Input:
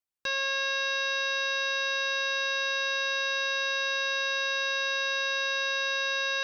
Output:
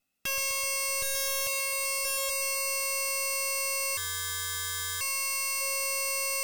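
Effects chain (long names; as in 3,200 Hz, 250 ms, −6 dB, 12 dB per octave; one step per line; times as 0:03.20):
lower of the sound and its delayed copy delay 1.5 ms
0:01.02–0:01.47: comb filter 1 ms, depth 82%
0:02.05–0:02.29: time-frequency box erased 630–3,100 Hz
on a send: delay with a high-pass on its return 127 ms, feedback 72%, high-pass 2,800 Hz, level −7 dB
on the sum: brickwall limiter −25 dBFS, peak gain reduction 4.5 dB
hollow resonant body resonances 240/2,600 Hz, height 15 dB, ringing for 30 ms
sine wavefolder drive 14 dB, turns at −20.5 dBFS
0:03.97–0:05.01: ring modulation 1,000 Hz
0:03.95–0:05.61: gain on a spectral selection 390–820 Hz −11 dB
level −6.5 dB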